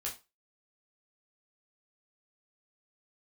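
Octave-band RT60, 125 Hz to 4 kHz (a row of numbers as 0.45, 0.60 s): 0.25, 0.25, 0.25, 0.25, 0.25, 0.25 s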